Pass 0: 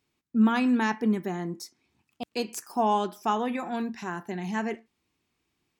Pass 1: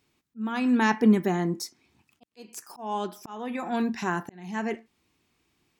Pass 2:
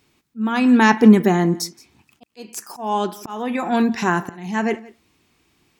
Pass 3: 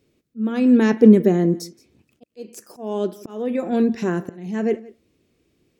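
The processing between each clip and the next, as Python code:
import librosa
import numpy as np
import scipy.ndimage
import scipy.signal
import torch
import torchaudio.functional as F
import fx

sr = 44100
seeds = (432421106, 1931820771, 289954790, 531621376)

y1 = fx.auto_swell(x, sr, attack_ms=674.0)
y1 = y1 * librosa.db_to_amplitude(6.0)
y2 = y1 + 10.0 ** (-22.0 / 20.0) * np.pad(y1, (int(173 * sr / 1000.0), 0))[:len(y1)]
y2 = y2 * librosa.db_to_amplitude(9.0)
y3 = fx.low_shelf_res(y2, sr, hz=680.0, db=7.5, q=3.0)
y3 = y3 * librosa.db_to_amplitude(-9.0)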